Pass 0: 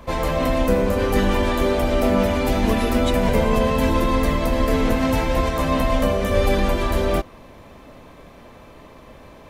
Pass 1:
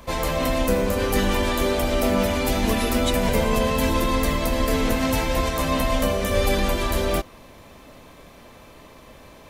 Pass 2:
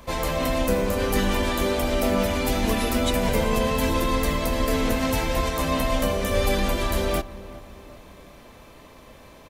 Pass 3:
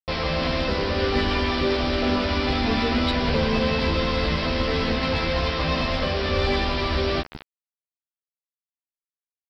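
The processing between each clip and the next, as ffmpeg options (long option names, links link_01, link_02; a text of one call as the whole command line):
ffmpeg -i in.wav -af "highshelf=frequency=3100:gain=9.5,volume=-3dB" out.wav
ffmpeg -i in.wav -filter_complex "[0:a]asplit=2[link_01][link_02];[link_02]adelay=384,lowpass=frequency=1400:poles=1,volume=-16dB,asplit=2[link_03][link_04];[link_04]adelay=384,lowpass=frequency=1400:poles=1,volume=0.52,asplit=2[link_05][link_06];[link_06]adelay=384,lowpass=frequency=1400:poles=1,volume=0.52,asplit=2[link_07][link_08];[link_08]adelay=384,lowpass=frequency=1400:poles=1,volume=0.52,asplit=2[link_09][link_10];[link_10]adelay=384,lowpass=frequency=1400:poles=1,volume=0.52[link_11];[link_01][link_03][link_05][link_07][link_09][link_11]amix=inputs=6:normalize=0,volume=-1.5dB" out.wav
ffmpeg -i in.wav -filter_complex "[0:a]aresample=11025,acrusher=bits=4:mix=0:aa=0.000001,aresample=44100,asoftclip=type=tanh:threshold=-11.5dB,asplit=2[link_01][link_02];[link_02]adelay=13,volume=-3dB[link_03];[link_01][link_03]amix=inputs=2:normalize=0" out.wav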